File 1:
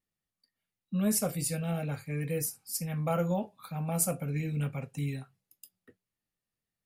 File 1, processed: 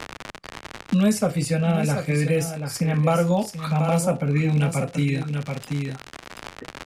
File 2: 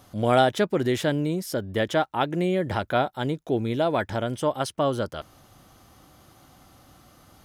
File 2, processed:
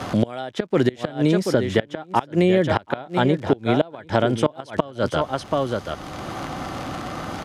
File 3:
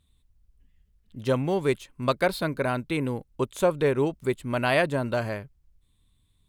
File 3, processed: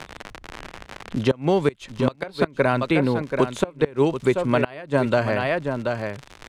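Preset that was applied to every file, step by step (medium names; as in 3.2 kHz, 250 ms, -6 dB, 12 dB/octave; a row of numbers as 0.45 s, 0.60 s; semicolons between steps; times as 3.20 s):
gate -59 dBFS, range -8 dB; bass shelf 120 Hz -4.5 dB; crackle 86 per s -39 dBFS; distance through air 66 m; delay 732 ms -11 dB; inverted gate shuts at -14 dBFS, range -25 dB; three bands compressed up and down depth 70%; normalise loudness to -23 LUFS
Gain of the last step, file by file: +12.5 dB, +9.0 dB, +8.0 dB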